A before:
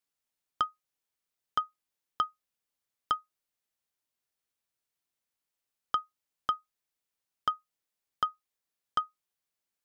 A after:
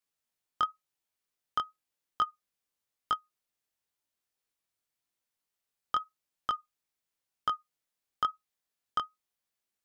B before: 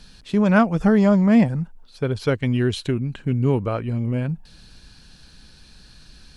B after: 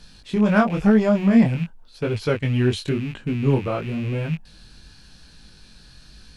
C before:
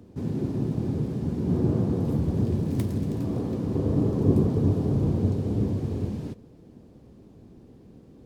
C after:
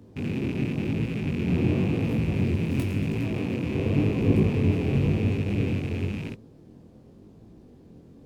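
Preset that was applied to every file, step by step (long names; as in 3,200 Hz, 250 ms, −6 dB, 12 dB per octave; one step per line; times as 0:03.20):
loose part that buzzes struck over −31 dBFS, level −28 dBFS
in parallel at −8 dB: hard clipping −15.5 dBFS
on the sum: chorus effect 0.94 Hz, delay 18 ms, depth 5.7 ms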